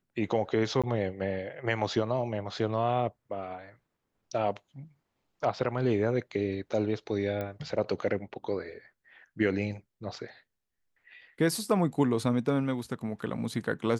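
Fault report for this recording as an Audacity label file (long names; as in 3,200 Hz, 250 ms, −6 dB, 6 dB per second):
0.820000	0.840000	drop-out 16 ms
7.410000	7.410000	click −22 dBFS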